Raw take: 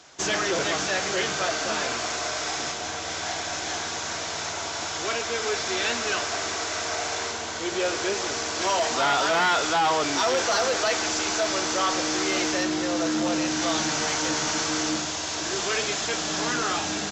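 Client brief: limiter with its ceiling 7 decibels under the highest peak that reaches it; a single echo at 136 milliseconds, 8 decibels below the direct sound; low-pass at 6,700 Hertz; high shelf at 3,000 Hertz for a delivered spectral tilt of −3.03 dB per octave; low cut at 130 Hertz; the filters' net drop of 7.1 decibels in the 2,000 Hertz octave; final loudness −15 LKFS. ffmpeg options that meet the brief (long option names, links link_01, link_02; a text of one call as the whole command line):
ffmpeg -i in.wav -af "highpass=130,lowpass=6700,equalizer=frequency=2000:width_type=o:gain=-7,highshelf=frequency=3000:gain=-8,alimiter=level_in=0.5dB:limit=-24dB:level=0:latency=1,volume=-0.5dB,aecho=1:1:136:0.398,volume=17dB" out.wav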